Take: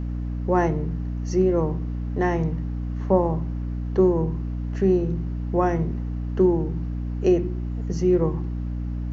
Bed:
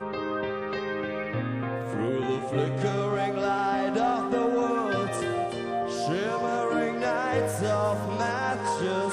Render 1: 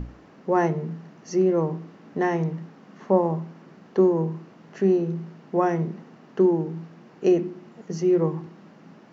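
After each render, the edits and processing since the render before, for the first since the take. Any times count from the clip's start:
mains-hum notches 60/120/180/240/300 Hz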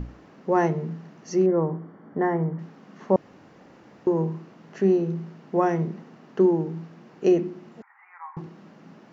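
0:01.46–0:02.59: Savitzky-Golay smoothing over 41 samples
0:03.16–0:04.07: fill with room tone
0:07.82–0:08.37: Chebyshev band-pass filter 810–2,300 Hz, order 5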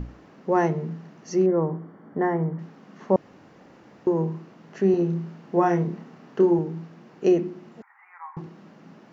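0:04.91–0:06.59: double-tracking delay 29 ms −4.5 dB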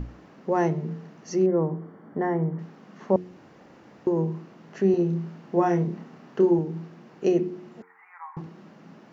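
dynamic equaliser 1,300 Hz, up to −4 dB, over −37 dBFS, Q 0.77
hum removal 90.5 Hz, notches 5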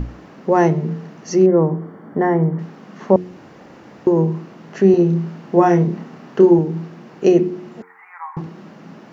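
level +9 dB
brickwall limiter −1 dBFS, peak gain reduction 1 dB

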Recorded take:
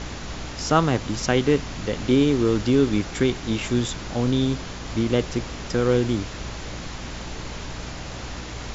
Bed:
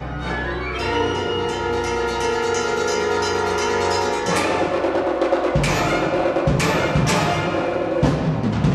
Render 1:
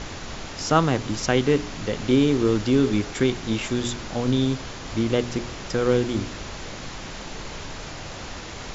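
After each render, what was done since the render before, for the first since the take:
hum removal 60 Hz, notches 7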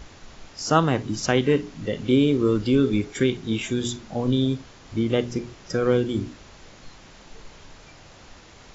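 noise reduction from a noise print 12 dB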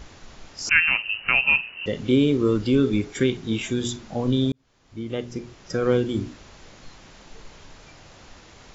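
0:00.69–0:01.86: voice inversion scrambler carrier 2,900 Hz
0:04.52–0:05.92: fade in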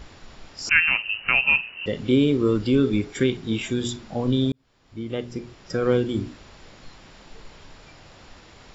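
notch filter 6,300 Hz, Q 6.4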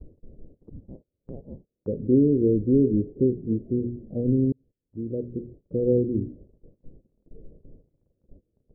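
Butterworth low-pass 530 Hz 48 dB per octave
noise gate −46 dBFS, range −24 dB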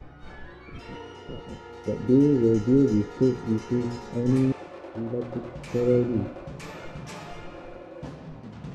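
mix in bed −21 dB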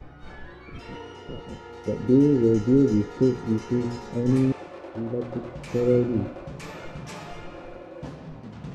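level +1 dB

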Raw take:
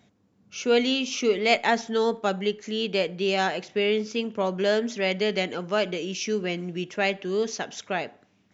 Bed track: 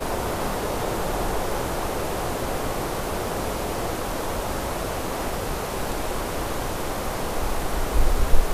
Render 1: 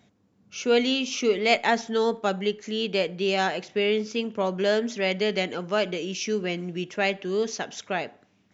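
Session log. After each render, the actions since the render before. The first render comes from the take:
no processing that can be heard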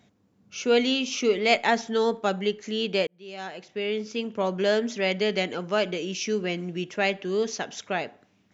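0:03.07–0:04.49: fade in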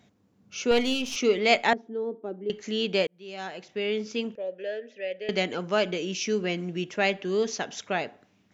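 0:00.71–0:01.16: gain on one half-wave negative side −7 dB
0:01.73–0:02.50: resonant band-pass 330 Hz, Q 3.1
0:04.35–0:05.29: formant filter e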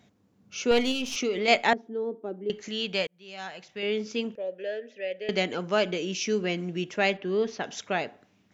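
0:00.91–0:01.48: downward compressor 4 to 1, threshold −24 dBFS
0:02.68–0:03.83: parametric band 340 Hz −8.5 dB 1.5 octaves
0:07.17–0:07.64: high-frequency loss of the air 200 metres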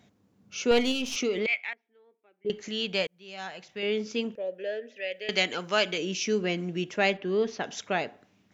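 0:01.46–0:02.45: resonant band-pass 2,300 Hz, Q 6.3
0:04.96–0:05.98: tilt shelving filter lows −6 dB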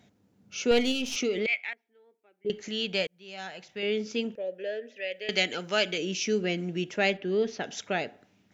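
notch filter 1,100 Hz, Q 8.6
dynamic equaliser 1,000 Hz, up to −6 dB, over −45 dBFS, Q 2.2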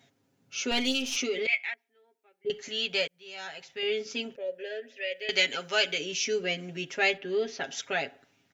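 low-shelf EQ 500 Hz −8.5 dB
comb filter 7.4 ms, depth 82%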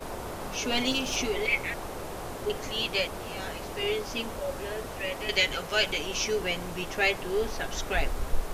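mix in bed track −10.5 dB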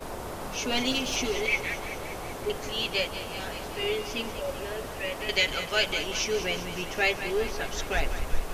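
feedback echo with a high-pass in the loop 192 ms, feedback 67%, level −11 dB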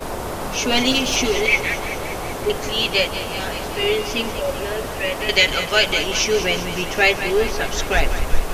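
level +9.5 dB
brickwall limiter −2 dBFS, peak gain reduction 1 dB

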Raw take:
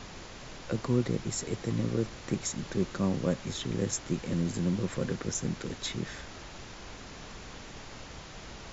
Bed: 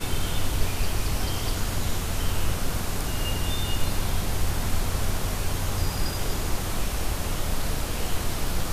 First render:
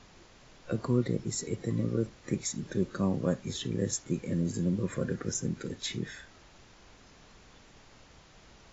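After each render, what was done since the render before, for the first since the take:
noise reduction from a noise print 11 dB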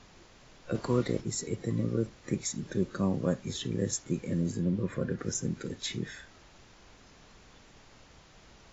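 0:00.74–0:01.20: ceiling on every frequency bin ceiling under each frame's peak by 12 dB
0:04.54–0:05.19: high-frequency loss of the air 110 metres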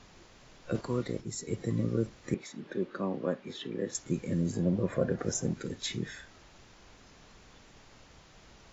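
0:00.81–0:01.48: clip gain −4.5 dB
0:02.34–0:03.95: three-way crossover with the lows and the highs turned down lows −22 dB, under 210 Hz, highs −22 dB, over 4,000 Hz
0:04.53–0:05.54: parametric band 670 Hz +12.5 dB 0.78 octaves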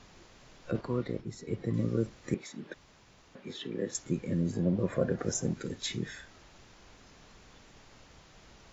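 0:00.71–0:01.74: high-frequency loss of the air 160 metres
0:02.74–0:03.35: fill with room tone
0:04.10–0:04.79: high-frequency loss of the air 74 metres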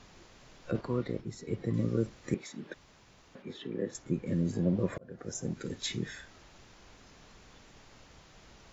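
0:03.42–0:04.27: high-shelf EQ 3,100 Hz −10 dB
0:04.98–0:05.74: fade in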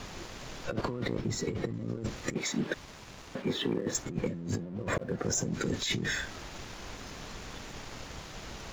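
compressor whose output falls as the input rises −40 dBFS, ratio −1
leveller curve on the samples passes 2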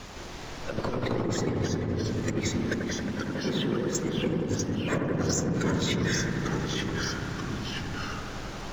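delay with pitch and tempo change per echo 160 ms, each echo −2 semitones, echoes 2
on a send: delay with a low-pass on its return 91 ms, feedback 82%, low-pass 1,500 Hz, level −4 dB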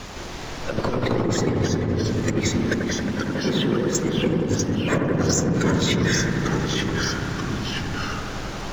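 level +6.5 dB

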